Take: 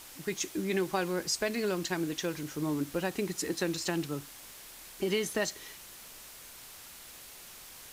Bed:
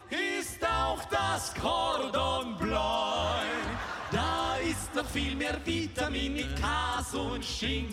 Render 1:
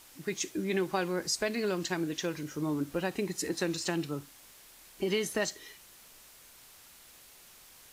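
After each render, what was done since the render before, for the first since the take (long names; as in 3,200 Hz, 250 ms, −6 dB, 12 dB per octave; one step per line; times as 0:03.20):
noise reduction from a noise print 6 dB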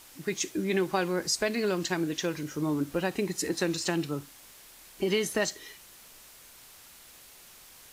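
level +3 dB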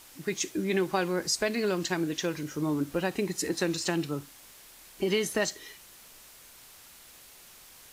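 no processing that can be heard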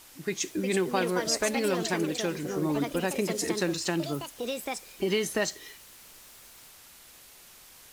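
delay with pitch and tempo change per echo 416 ms, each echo +4 semitones, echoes 2, each echo −6 dB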